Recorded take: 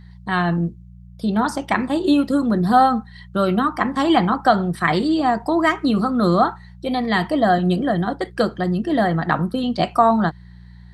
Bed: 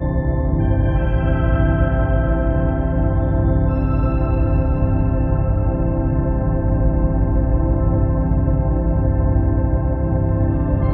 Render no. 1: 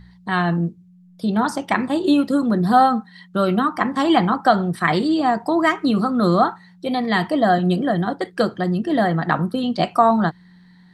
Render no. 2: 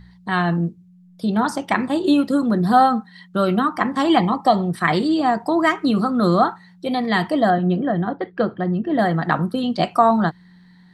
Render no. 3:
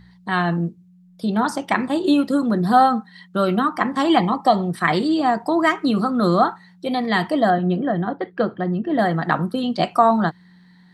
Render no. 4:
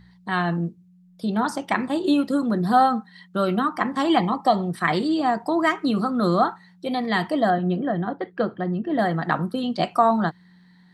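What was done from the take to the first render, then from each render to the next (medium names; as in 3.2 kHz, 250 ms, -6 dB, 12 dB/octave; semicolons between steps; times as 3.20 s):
de-hum 60 Hz, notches 2
4.19–4.70 s: Butterworth band-stop 1.5 kHz, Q 2.6; 7.50–8.99 s: distance through air 390 m
bass shelf 70 Hz -10.5 dB
trim -3 dB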